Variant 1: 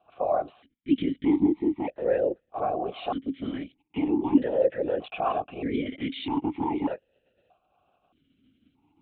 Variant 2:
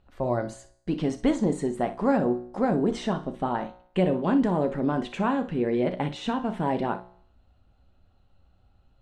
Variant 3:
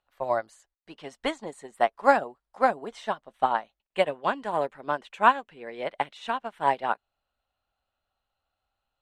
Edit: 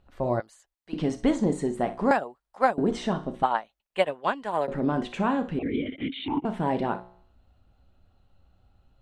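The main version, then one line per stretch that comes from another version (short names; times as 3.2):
2
0.4–0.93 from 3
2.11–2.78 from 3
3.43–4.68 from 3
5.59–6.45 from 1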